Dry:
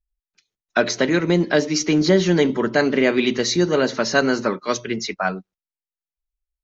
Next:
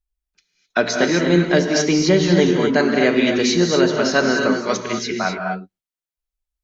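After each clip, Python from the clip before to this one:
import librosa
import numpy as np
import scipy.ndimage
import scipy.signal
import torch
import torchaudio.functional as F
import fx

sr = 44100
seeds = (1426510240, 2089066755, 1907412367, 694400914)

y = fx.rev_gated(x, sr, seeds[0], gate_ms=280, shape='rising', drr_db=2.5)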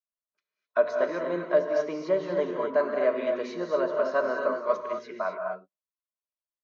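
y = fx.double_bandpass(x, sr, hz=800.0, octaves=0.73)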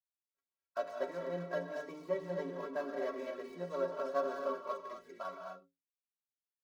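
y = scipy.signal.medfilt(x, 15)
y = fx.stiff_resonator(y, sr, f0_hz=82.0, decay_s=0.32, stiffness=0.03)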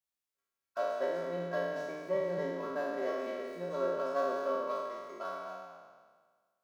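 y = fx.spec_trails(x, sr, decay_s=1.58)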